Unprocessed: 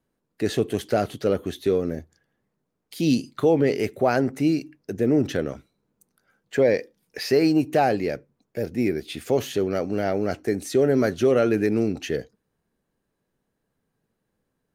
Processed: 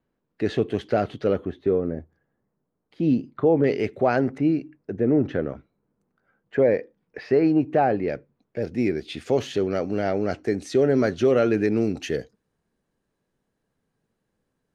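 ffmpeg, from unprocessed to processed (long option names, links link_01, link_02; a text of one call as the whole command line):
ffmpeg -i in.wav -af "asetnsamples=nb_out_samples=441:pad=0,asendcmd='1.45 lowpass f 1400;3.64 lowpass f 3600;4.38 lowpass f 1800;8.08 lowpass f 3400;8.62 lowpass f 5700;11.83 lowpass f 10000',lowpass=3300" out.wav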